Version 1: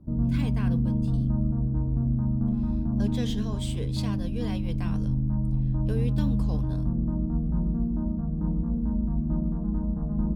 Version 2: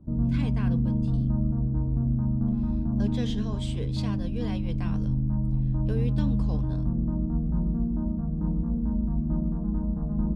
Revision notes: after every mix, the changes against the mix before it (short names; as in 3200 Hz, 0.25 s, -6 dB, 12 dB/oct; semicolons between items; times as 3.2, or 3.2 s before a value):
master: add air absorption 56 m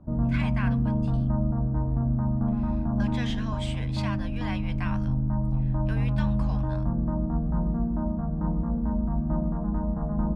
speech: add HPF 1100 Hz 12 dB/oct; master: add band shelf 1200 Hz +10.5 dB 2.5 oct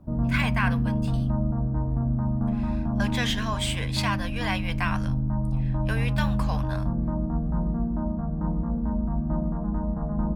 speech +8.5 dB; master: remove air absorption 56 m